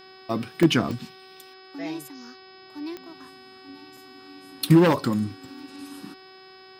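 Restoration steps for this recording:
click removal
hum removal 377.7 Hz, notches 13
notch filter 5,100 Hz, Q 30
repair the gap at 0:00.63/0:00.99/0:03.97, 2.5 ms

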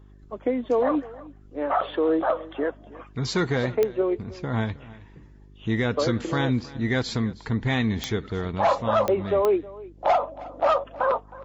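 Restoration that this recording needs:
click removal
hum removal 50.2 Hz, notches 8
echo removal 316 ms −19.5 dB

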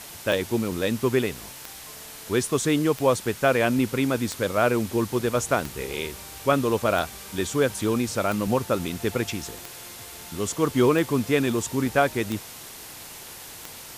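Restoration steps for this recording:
click removal
broadband denoise 28 dB, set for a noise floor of −41 dBFS

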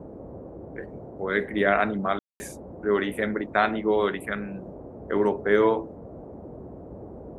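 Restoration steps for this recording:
ambience match 0:02.19–0:02.40
noise reduction from a noise print 28 dB

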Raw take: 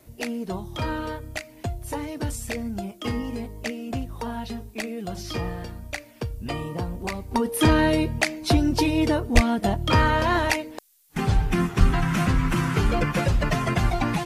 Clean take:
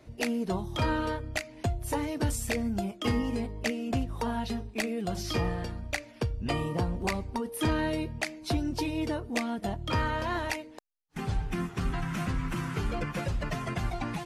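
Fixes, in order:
0:09.34–0:09.46: high-pass filter 140 Hz 24 dB per octave
0:11.79–0:11.91: high-pass filter 140 Hz 24 dB per octave
downward expander −31 dBFS, range −21 dB
level 0 dB, from 0:07.31 −9.5 dB

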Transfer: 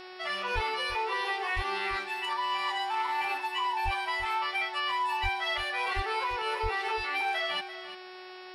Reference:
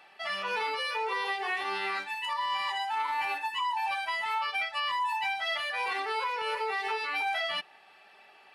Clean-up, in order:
click removal
hum removal 368.5 Hz, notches 15
high-pass at the plosives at 0:00.54/0:01.55/0:03.84/0:05.22/0:05.95/0:06.62
echo removal 342 ms −12.5 dB

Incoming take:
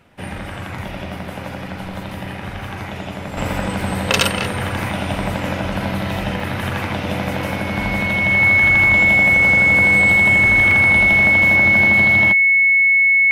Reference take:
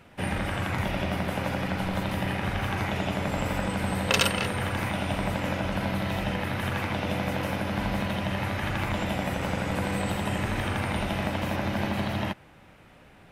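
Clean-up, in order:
notch filter 2,200 Hz, Q 30
repair the gap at 0:01.19/0:03.81/0:06.40/0:07.03/0:10.71, 3 ms
level 0 dB, from 0:03.37 −6.5 dB

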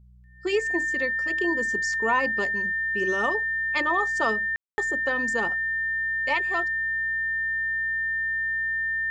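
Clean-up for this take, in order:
hum removal 61.3 Hz, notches 3
notch filter 1,800 Hz, Q 30
ambience match 0:04.56–0:04.78

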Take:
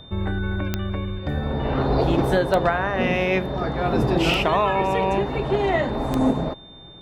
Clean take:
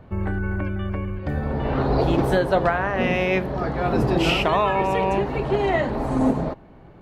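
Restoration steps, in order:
click removal
notch filter 3,600 Hz, Q 30

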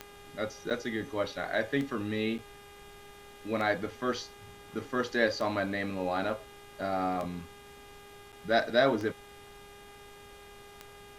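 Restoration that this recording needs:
click removal
hum removal 406.2 Hz, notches 9
repair the gap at 0:00.70/0:02.38/0:08.32, 7 ms
broadband denoise 26 dB, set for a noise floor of −51 dBFS

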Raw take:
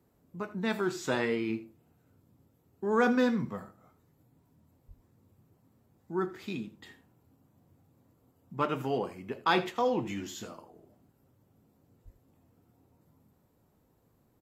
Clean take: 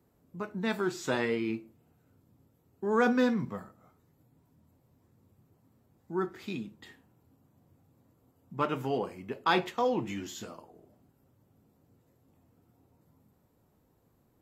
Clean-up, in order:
0:04.87–0:04.99: high-pass filter 140 Hz 24 dB per octave
0:12.04–0:12.16: high-pass filter 140 Hz 24 dB per octave
echo removal 81 ms −16.5 dB

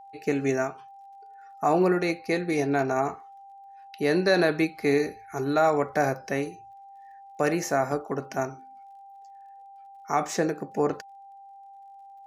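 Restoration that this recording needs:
click removal
notch filter 790 Hz, Q 30

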